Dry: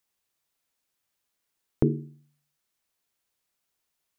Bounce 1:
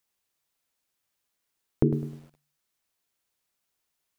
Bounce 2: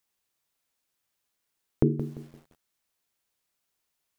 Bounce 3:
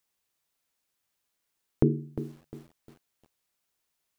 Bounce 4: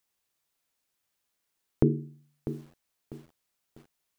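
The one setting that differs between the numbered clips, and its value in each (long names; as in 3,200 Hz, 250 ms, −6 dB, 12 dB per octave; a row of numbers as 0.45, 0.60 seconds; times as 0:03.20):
feedback echo at a low word length, delay time: 103, 172, 353, 647 milliseconds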